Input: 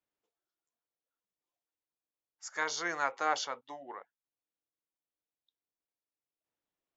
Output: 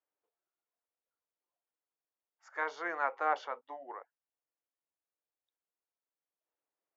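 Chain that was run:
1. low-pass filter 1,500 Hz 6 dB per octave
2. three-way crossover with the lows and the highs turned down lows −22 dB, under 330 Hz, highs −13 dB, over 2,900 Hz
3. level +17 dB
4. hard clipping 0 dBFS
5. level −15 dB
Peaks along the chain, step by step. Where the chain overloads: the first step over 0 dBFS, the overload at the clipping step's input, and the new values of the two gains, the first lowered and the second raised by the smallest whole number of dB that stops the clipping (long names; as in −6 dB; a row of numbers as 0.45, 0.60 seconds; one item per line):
−19.5, −19.5, −2.5, −2.5, −17.5 dBFS
no step passes full scale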